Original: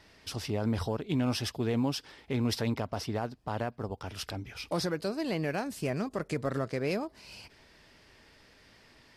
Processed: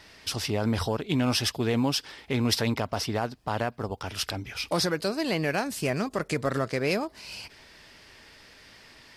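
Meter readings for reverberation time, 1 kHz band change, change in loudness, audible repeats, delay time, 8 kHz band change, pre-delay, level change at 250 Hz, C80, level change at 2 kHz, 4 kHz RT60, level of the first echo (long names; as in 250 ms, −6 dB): no reverb audible, +6.0 dB, +5.0 dB, no echo audible, no echo audible, +9.0 dB, no reverb audible, +3.5 dB, no reverb audible, +8.0 dB, no reverb audible, no echo audible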